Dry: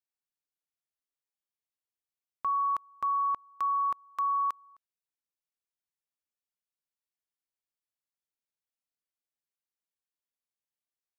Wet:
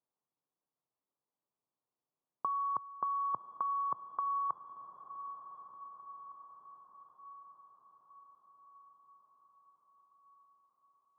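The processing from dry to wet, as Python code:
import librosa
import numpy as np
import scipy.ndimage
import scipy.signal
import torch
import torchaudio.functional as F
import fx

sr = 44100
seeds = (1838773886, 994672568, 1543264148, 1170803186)

y = scipy.signal.sosfilt(scipy.signal.ellip(3, 1.0, 40, [120.0, 1100.0], 'bandpass', fs=sr, output='sos'), x)
y = fx.over_compress(y, sr, threshold_db=-34.0, ratio=-0.5)
y = fx.echo_diffused(y, sr, ms=1042, feedback_pct=57, wet_db=-11.5)
y = y * librosa.db_to_amplitude(2.5)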